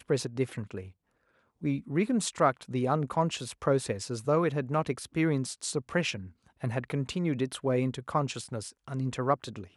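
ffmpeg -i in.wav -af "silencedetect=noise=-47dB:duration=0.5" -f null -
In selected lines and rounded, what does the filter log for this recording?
silence_start: 0.90
silence_end: 1.62 | silence_duration: 0.71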